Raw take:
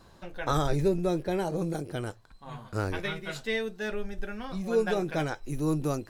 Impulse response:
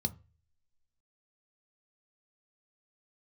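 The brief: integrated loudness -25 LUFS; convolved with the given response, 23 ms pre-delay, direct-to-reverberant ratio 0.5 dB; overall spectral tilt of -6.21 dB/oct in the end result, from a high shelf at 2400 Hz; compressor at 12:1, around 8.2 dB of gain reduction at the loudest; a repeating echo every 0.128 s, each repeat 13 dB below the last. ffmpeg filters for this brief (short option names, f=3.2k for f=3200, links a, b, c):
-filter_complex "[0:a]highshelf=f=2.4k:g=8.5,acompressor=threshold=-28dB:ratio=12,aecho=1:1:128|256|384:0.224|0.0493|0.0108,asplit=2[a][b];[1:a]atrim=start_sample=2205,adelay=23[c];[b][c]afir=irnorm=-1:irlink=0,volume=-2dB[d];[a][d]amix=inputs=2:normalize=0,volume=1.5dB"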